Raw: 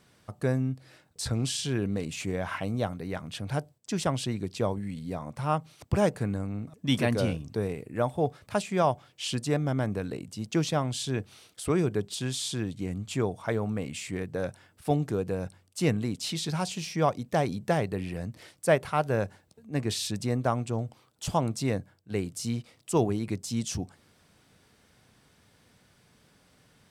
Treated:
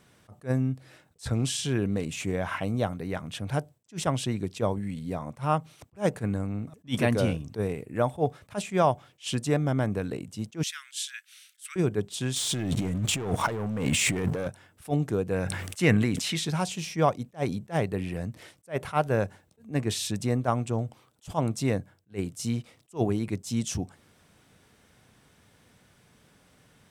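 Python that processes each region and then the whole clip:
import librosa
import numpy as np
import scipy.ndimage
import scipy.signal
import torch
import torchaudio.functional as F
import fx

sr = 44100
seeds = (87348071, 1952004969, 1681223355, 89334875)

y = fx.chain(x, sr, fx.steep_highpass(hz=1500.0, slope=48),
    fx.high_shelf(hz=9800.0, db=4.5), at=(10.63, 11.76))
y = fx.chain(y, sr, fx.leveller(passes=3),
    fx.over_compress(threshold_db=-30.0, ratio=-1.0), at=(12.36, 14.48))
y = fx.chain(y, sr, fx.peak_eq(hz=1900.0, db=8.5, octaves=1.1),
    fx.sustainer(db_per_s=35.0), at=(15.32, 16.44))
y = fx.peak_eq(y, sr, hz=4600.0, db=-5.0, octaves=0.36)
y = fx.attack_slew(y, sr, db_per_s=340.0)
y = F.gain(torch.from_numpy(y), 2.0).numpy()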